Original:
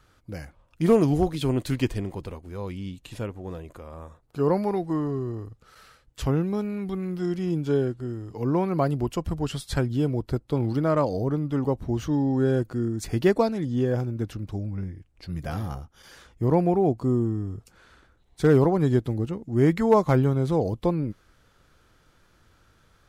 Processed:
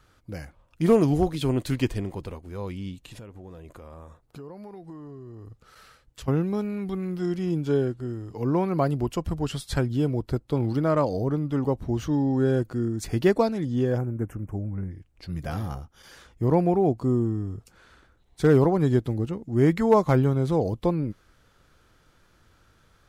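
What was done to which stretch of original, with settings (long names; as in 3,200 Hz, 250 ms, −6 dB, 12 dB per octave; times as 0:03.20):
0:03.01–0:06.28: downward compressor, threshold −39 dBFS
0:13.98–0:14.91: Butterworth band-reject 4,100 Hz, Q 0.7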